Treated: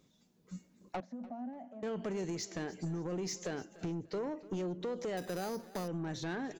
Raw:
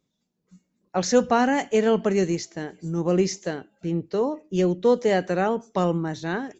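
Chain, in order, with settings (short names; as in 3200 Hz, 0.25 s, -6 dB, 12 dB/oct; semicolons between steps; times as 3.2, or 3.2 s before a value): limiter -19 dBFS, peak gain reduction 12 dB; compressor 16:1, threshold -39 dBFS, peak gain reduction 17 dB; soft clip -39 dBFS, distortion -14 dB; 1–1.83 double band-pass 400 Hz, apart 1.4 oct; feedback echo 0.294 s, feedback 33%, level -19 dB; 5.17–5.88 careless resampling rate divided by 8×, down none, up hold; gain +7.5 dB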